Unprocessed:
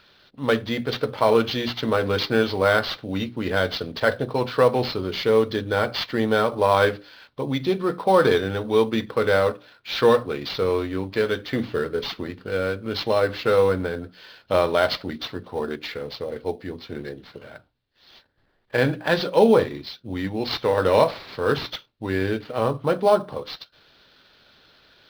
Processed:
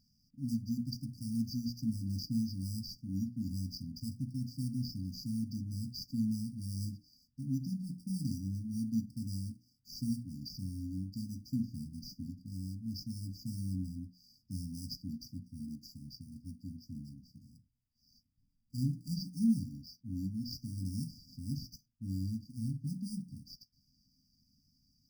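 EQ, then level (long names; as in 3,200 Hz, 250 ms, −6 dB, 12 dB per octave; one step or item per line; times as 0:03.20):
linear-phase brick-wall band-stop 280–4,600 Hz
−6.5 dB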